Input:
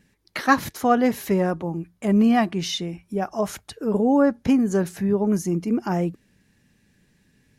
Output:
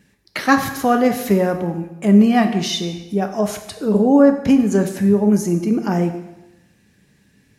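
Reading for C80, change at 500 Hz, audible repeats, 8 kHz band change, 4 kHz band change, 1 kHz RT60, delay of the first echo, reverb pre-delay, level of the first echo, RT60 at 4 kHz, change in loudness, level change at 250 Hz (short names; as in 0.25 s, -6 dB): 11.0 dB, +5.5 dB, none, +5.5 dB, +5.0 dB, 1.0 s, none, 5 ms, none, 0.95 s, +5.5 dB, +5.5 dB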